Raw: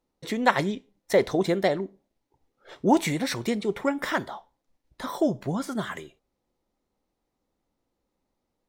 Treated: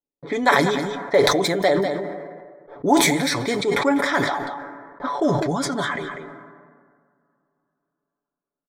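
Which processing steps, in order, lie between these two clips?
level-controlled noise filter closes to 560 Hz, open at -23 dBFS; gate -57 dBFS, range -21 dB; bass shelf 200 Hz -11 dB; hum notches 50/100/150 Hz; comb 7 ms; in parallel at +3 dB: compression, threshold -31 dBFS, peak gain reduction 16.5 dB; on the sum: Butterworth band-stop 2.8 kHz, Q 5; delay 197 ms -13.5 dB; on a send at -22.5 dB: reverberation RT60 3.4 s, pre-delay 82 ms; on the sum: decay stretcher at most 34 dB/s

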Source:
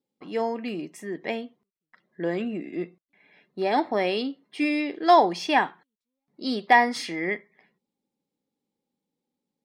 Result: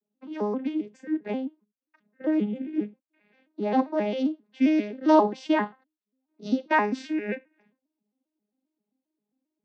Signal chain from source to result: vocoder on a broken chord major triad, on G#3, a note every 133 ms

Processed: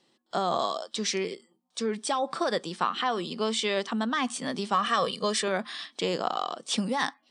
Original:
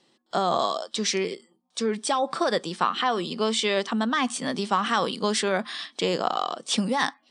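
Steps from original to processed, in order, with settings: 4.74–5.48 s: comb 1.7 ms, depth 65%; trim -3.5 dB

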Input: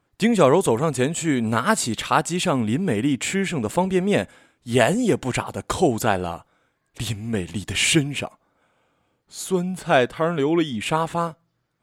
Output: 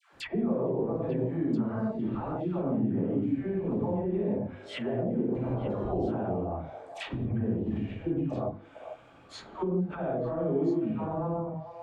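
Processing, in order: peaking EQ 4.8 kHz +3 dB 1.9 oct; phase dispersion lows, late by 132 ms, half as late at 800 Hz; compression 6:1, threshold -27 dBFS, peak gain reduction 15.5 dB; hum notches 50/100/150/200/250 Hz; gated-style reverb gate 190 ms flat, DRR -5.5 dB; low-pass that closes with the level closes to 480 Hz, closed at -22.5 dBFS; treble shelf 6.7 kHz -12 dB, from 4.77 s -4.5 dB, from 5.84 s -12 dB; repeats whose band climbs or falls 444 ms, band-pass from 770 Hz, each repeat 1.4 oct, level -11.5 dB; three bands compressed up and down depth 40%; trim -2.5 dB

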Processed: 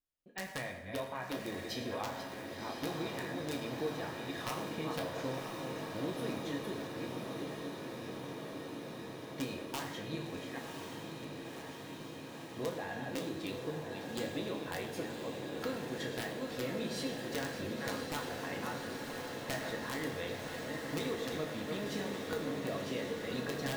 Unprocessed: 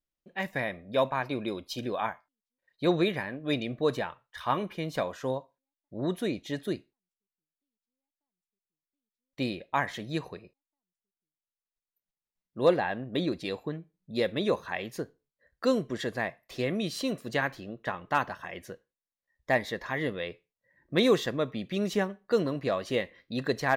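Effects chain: chunks repeated in reverse 392 ms, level -10 dB; compression 8:1, threshold -32 dBFS, peak gain reduction 15 dB; integer overflow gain 24 dB; echo that smears into a reverb 1051 ms, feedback 80%, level -5 dB; on a send at -1 dB: reverberation RT60 0.95 s, pre-delay 5 ms; on the sum: trim -5.5 dB

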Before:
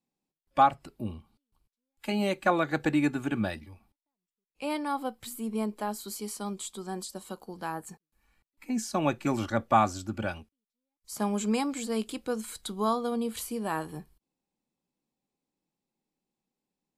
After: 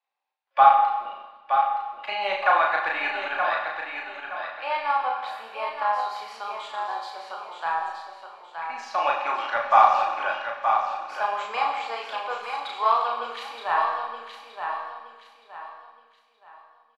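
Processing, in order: high-pass 760 Hz 24 dB/octave; treble shelf 9.9 kHz -11.5 dB; in parallel at -9 dB: overload inside the chain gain 32 dB; on the sum: distance through air 310 m; doubling 35 ms -2 dB; feedback delay 921 ms, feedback 33%, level -6.5 dB; on a send at -4 dB: reverberation RT60 1.3 s, pre-delay 30 ms; on the sum: trim +7.5 dB

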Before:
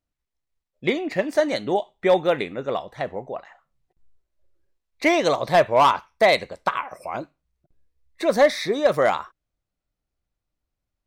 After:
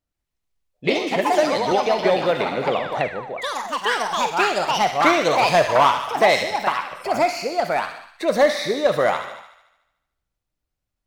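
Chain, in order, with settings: gated-style reverb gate 360 ms falling, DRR 11 dB; 3.84–4.31 s: painted sound fall 420–2000 Hz -30 dBFS; on a send: feedback echo behind a high-pass 74 ms, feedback 61%, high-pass 1.6 kHz, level -6 dB; on the sum: ever faster or slower copies 144 ms, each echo +3 st, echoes 3; 1.71–3.08 s: three bands compressed up and down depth 70%

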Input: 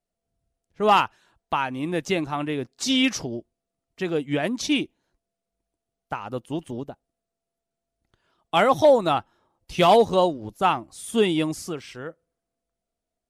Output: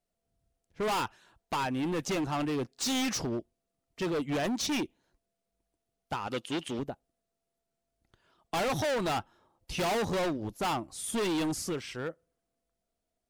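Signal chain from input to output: overload inside the chain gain 28 dB; 6.27–6.79 s: frequency weighting D

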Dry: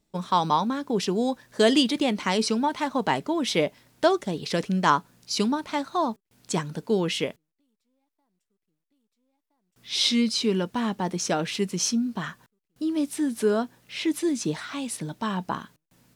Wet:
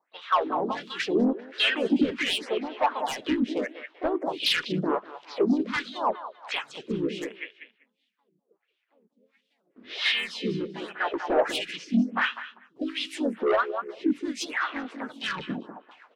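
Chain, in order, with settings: recorder AGC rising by 5.7 dB/s; tone controls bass -2 dB, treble -4 dB; wah-wah 1.4 Hz 240–3400 Hz, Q 4.6; dynamic bell 220 Hz, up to -4 dB, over -44 dBFS, Q 1.6; on a send: feedback delay 196 ms, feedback 24%, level -14 dB; on the sum: rotary cabinet horn 0.85 Hz, later 8 Hz, at 11.60 s; harmony voices -4 st -15 dB, -3 st -3 dB, +3 st -14 dB; overdrive pedal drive 20 dB, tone 7.1 kHz, clips at -16.5 dBFS; lamp-driven phase shifter 0.83 Hz; trim +6.5 dB

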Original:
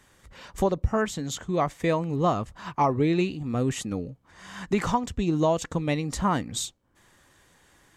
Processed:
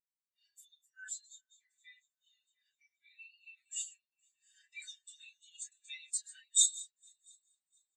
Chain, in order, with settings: chunks repeated in reverse 239 ms, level -8 dB; elliptic high-pass 1.7 kHz, stop band 50 dB; differentiator; comb 6 ms, depth 78%; multi-head delay 232 ms, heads second and third, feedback 59%, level -16.5 dB; reverberation, pre-delay 3 ms, DRR -1 dB; in parallel at -11 dB: integer overflow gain 31 dB; 1.26–3.34 s: on the sum: compression 1.5:1, threshold -50 dBFS, peak gain reduction 9 dB; spectral contrast expander 2.5:1

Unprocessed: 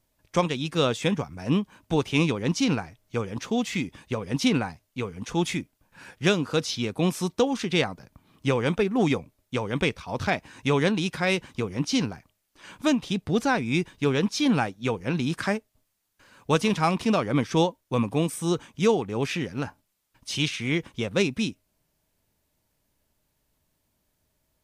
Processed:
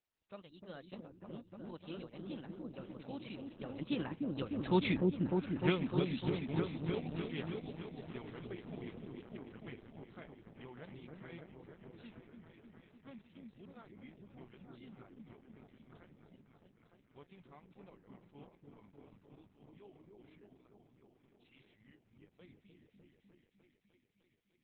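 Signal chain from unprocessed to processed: Doppler pass-by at 4.93 s, 42 m/s, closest 14 m; delay with an opening low-pass 302 ms, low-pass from 400 Hz, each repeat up 1 oct, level 0 dB; trim -3.5 dB; Opus 8 kbps 48 kHz

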